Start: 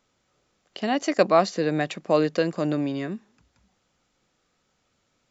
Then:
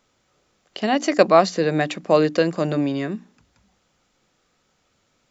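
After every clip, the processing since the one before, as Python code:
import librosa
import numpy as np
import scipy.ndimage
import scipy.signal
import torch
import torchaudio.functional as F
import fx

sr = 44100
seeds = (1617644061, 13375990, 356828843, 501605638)

y = fx.hum_notches(x, sr, base_hz=60, count=5)
y = y * librosa.db_to_amplitude(4.5)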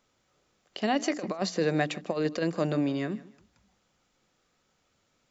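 y = fx.over_compress(x, sr, threshold_db=-18.0, ratio=-0.5)
y = fx.echo_feedback(y, sr, ms=153, feedback_pct=27, wet_db=-19.5)
y = y * librosa.db_to_amplitude(-7.5)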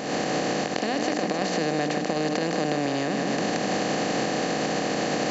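y = fx.bin_compress(x, sr, power=0.2)
y = fx.recorder_agc(y, sr, target_db=-11.5, rise_db_per_s=57.0, max_gain_db=30)
y = fx.end_taper(y, sr, db_per_s=180.0)
y = y * librosa.db_to_amplitude(-5.5)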